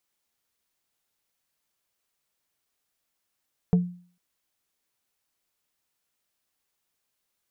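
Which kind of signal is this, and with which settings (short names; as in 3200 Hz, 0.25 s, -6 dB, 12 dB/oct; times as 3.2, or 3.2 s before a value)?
wood hit plate, lowest mode 177 Hz, decay 0.45 s, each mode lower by 9.5 dB, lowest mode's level -13.5 dB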